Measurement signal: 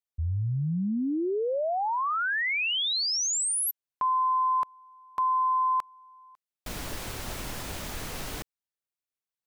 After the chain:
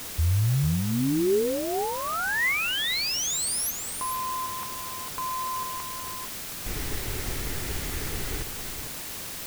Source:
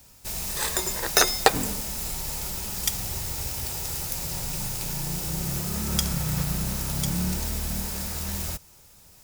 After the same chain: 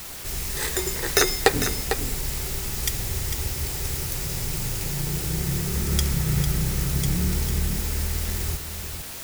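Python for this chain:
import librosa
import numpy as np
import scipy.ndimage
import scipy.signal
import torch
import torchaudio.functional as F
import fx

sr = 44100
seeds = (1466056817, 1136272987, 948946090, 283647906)

p1 = fx.graphic_eq_31(x, sr, hz=(200, 400, 630, 1000, 2000), db=(-8, 6, -7, -6, 6))
p2 = fx.quant_dither(p1, sr, seeds[0], bits=6, dither='triangular')
p3 = fx.low_shelf(p2, sr, hz=320.0, db=8.0)
p4 = p3 + fx.echo_single(p3, sr, ms=450, db=-8.0, dry=0)
y = p4 * librosa.db_to_amplitude(-1.5)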